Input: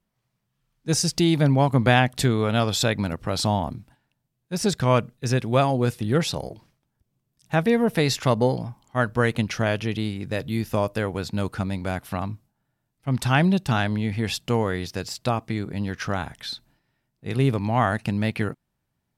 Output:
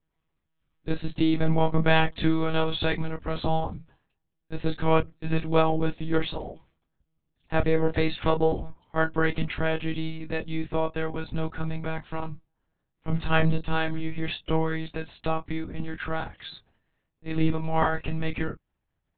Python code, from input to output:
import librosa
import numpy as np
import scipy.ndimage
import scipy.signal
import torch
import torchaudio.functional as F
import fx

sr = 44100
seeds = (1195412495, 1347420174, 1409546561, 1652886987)

y = fx.lpc_monotone(x, sr, seeds[0], pitch_hz=160.0, order=10)
y = fx.chorus_voices(y, sr, voices=2, hz=0.19, base_ms=26, depth_ms=3.8, mix_pct=25)